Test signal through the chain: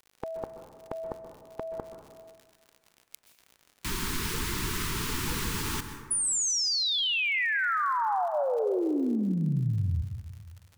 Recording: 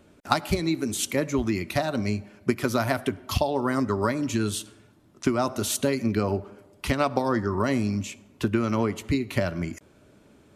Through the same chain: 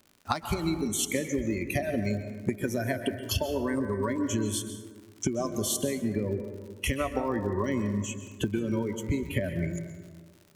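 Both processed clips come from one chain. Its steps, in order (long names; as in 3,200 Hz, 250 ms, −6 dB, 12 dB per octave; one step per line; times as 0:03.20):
noise reduction from a noise print of the clip's start 20 dB
downward compressor, threshold −33 dBFS
surface crackle 100 per second −48 dBFS
dense smooth reverb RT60 1.6 s, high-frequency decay 0.35×, pre-delay 115 ms, DRR 7.5 dB
level +6.5 dB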